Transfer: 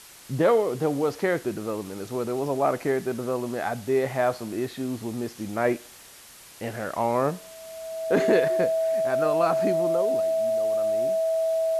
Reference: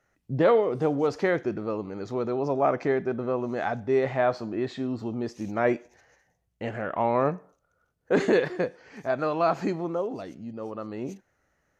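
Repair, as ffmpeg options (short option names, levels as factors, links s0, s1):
-af "bandreject=f=650:w=30,afwtdn=0.005,asetnsamples=n=441:p=0,asendcmd='10.2 volume volume 6.5dB',volume=1"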